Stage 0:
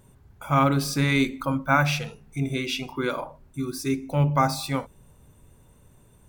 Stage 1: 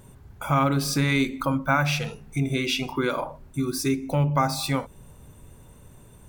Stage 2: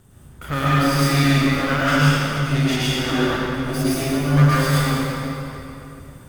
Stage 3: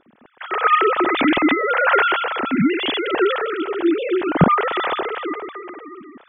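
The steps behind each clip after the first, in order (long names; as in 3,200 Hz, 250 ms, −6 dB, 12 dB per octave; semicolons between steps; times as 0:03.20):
downward compressor 2 to 1, threshold −30 dBFS, peak gain reduction 8.5 dB; level +6 dB
lower of the sound and its delayed copy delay 0.62 ms; convolution reverb RT60 3.0 s, pre-delay 96 ms, DRR −9 dB; level −2.5 dB
three sine waves on the formant tracks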